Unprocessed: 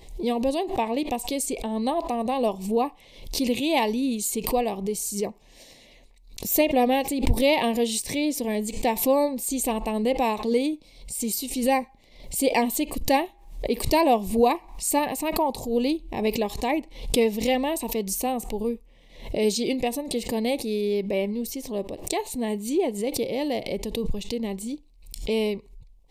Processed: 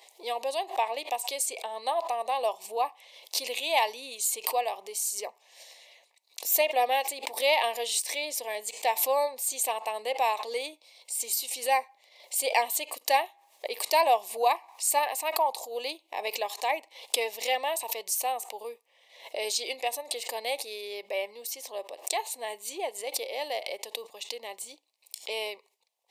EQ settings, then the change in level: HPF 620 Hz 24 dB/oct; 0.0 dB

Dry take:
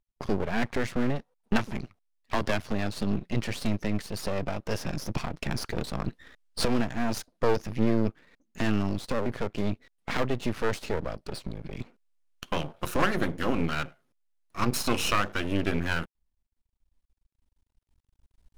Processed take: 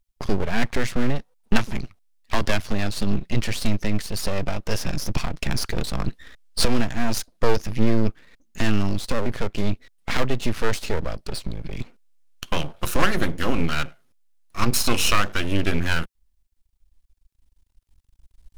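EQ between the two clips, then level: low shelf 79 Hz +11 dB; high shelf 2200 Hz +7.5 dB; +2.0 dB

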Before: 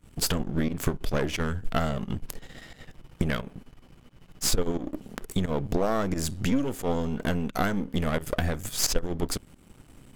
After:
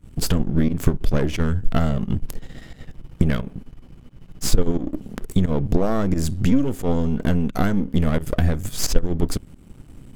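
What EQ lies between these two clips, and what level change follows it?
low shelf 230 Hz +11 dB; bell 300 Hz +2.5 dB 1.7 oct; 0.0 dB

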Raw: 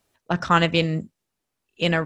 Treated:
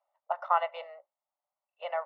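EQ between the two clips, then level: polynomial smoothing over 65 samples; rippled Chebyshev high-pass 560 Hz, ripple 3 dB; air absorption 160 m; 0.0 dB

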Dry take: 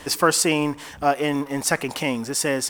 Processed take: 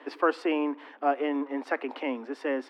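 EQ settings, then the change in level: steep high-pass 250 Hz 72 dB/oct; air absorption 400 m; high shelf 5900 Hz -10.5 dB; -4.0 dB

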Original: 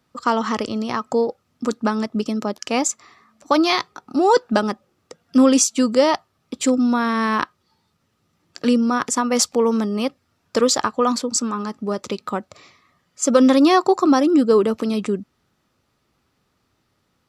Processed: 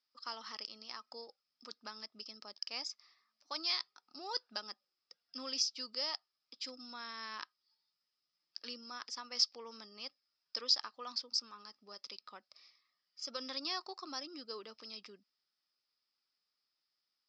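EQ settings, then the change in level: band-pass 5100 Hz, Q 15; air absorption 290 m; +13.0 dB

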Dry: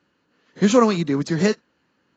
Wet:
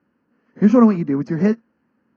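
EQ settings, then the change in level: running mean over 12 samples; bell 230 Hz +11 dB 0.33 oct; -1.0 dB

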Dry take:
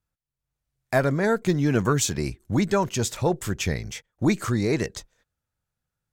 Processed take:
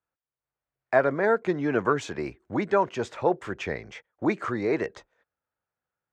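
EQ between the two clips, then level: HPF 50 Hz; air absorption 85 m; three-band isolator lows -16 dB, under 320 Hz, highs -15 dB, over 2400 Hz; +2.5 dB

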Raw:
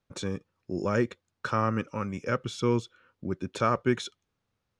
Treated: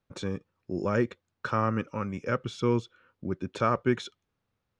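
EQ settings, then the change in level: high shelf 6500 Hz -11 dB; 0.0 dB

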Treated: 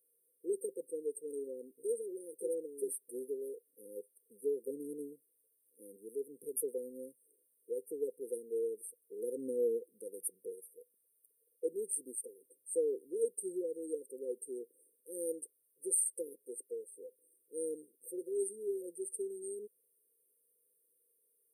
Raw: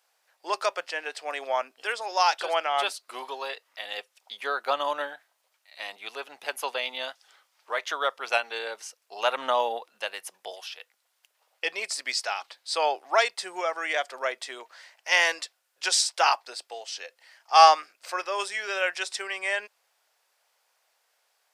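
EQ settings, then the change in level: brick-wall FIR band-stop 510–8400 Hz; +3.5 dB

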